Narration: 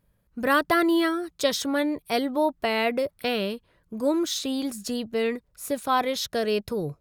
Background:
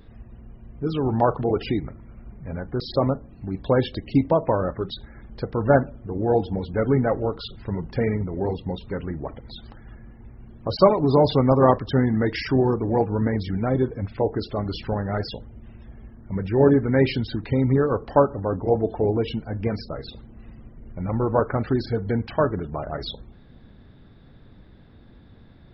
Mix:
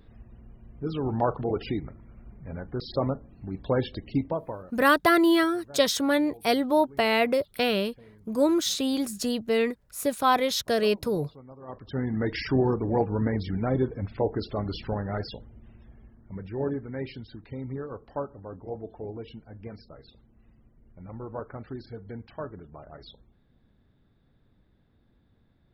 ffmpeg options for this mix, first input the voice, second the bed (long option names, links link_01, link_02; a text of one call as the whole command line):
ffmpeg -i stem1.wav -i stem2.wav -filter_complex "[0:a]adelay=4350,volume=1.5dB[link_01];[1:a]volume=20.5dB,afade=type=out:start_time=4.04:duration=0.69:silence=0.0630957,afade=type=in:start_time=11.66:duration=0.73:silence=0.0501187,afade=type=out:start_time=14.65:duration=2.25:silence=0.251189[link_02];[link_01][link_02]amix=inputs=2:normalize=0" out.wav